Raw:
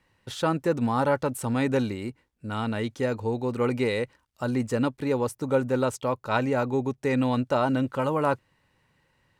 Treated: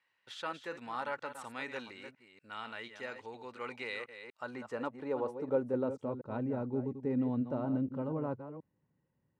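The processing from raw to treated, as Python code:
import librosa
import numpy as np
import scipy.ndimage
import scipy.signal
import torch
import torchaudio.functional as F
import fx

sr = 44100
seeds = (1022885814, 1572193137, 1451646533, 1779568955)

y = fx.reverse_delay(x, sr, ms=239, wet_db=-9.5)
y = fx.filter_sweep_bandpass(y, sr, from_hz=2200.0, to_hz=210.0, start_s=4.09, end_s=6.26, q=0.83)
y = y * 10.0 ** (-6.5 / 20.0)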